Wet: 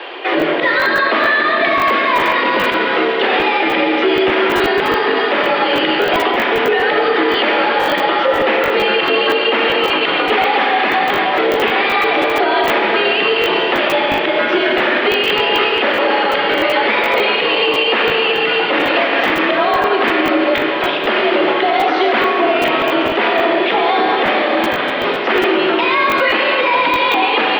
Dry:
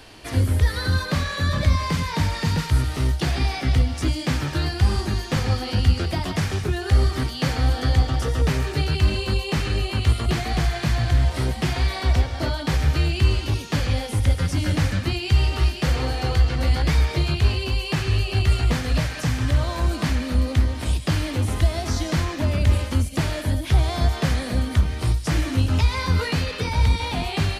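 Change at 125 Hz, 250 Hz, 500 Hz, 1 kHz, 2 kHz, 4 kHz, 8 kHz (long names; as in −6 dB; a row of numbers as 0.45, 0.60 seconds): −19.5 dB, +7.5 dB, +17.0 dB, +17.5 dB, +17.0 dB, +12.0 dB, can't be measured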